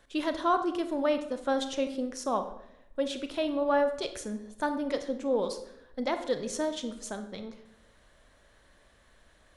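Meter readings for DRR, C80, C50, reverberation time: 8.0 dB, 13.0 dB, 10.5 dB, 0.80 s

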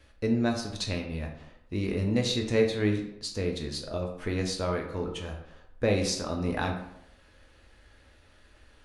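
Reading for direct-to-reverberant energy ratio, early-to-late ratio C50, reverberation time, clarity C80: 1.5 dB, 6.5 dB, 0.75 s, 10.0 dB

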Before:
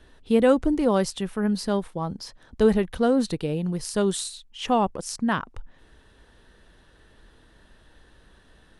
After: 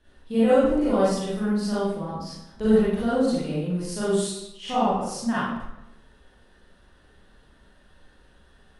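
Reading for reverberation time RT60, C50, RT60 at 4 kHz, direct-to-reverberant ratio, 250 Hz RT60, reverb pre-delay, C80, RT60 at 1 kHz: 0.85 s, −3.5 dB, 0.65 s, −10.5 dB, 0.90 s, 35 ms, 2.0 dB, 0.85 s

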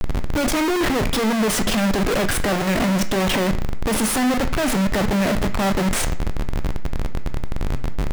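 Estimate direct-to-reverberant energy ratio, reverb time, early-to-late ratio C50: 8.0 dB, 0.50 s, 13.0 dB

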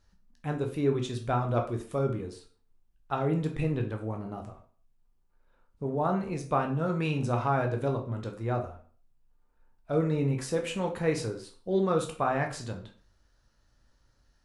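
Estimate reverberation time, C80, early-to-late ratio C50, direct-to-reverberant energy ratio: 0.45 s, 14.5 dB, 9.5 dB, 2.5 dB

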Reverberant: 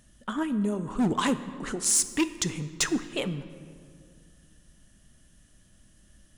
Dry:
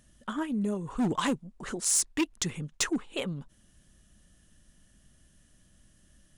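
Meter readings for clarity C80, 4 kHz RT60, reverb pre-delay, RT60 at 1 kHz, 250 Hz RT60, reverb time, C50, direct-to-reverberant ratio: 14.0 dB, 1.3 s, 7 ms, 2.1 s, 2.7 s, 2.2 s, 13.0 dB, 11.5 dB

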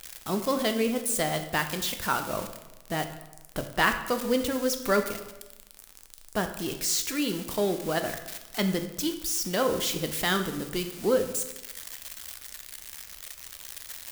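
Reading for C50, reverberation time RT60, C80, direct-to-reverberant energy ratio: 9.5 dB, 1.0 s, 11.5 dB, 6.5 dB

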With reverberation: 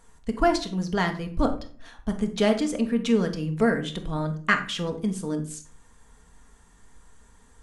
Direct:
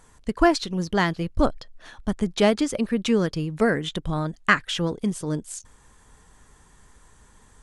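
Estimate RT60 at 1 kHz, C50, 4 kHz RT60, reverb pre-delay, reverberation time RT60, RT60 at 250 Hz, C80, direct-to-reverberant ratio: 0.45 s, 11.5 dB, 0.30 s, 4 ms, 0.45 s, 0.60 s, 16.0 dB, 4.5 dB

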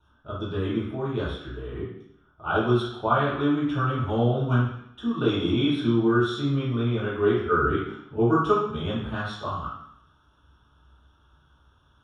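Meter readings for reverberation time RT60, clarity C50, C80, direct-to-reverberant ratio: 0.70 s, 1.5 dB, 6.0 dB, −9.5 dB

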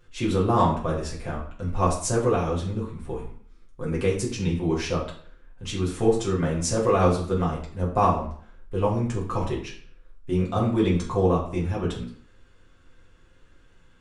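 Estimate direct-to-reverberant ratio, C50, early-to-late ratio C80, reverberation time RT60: −5.0 dB, 7.0 dB, 11.0 dB, 0.50 s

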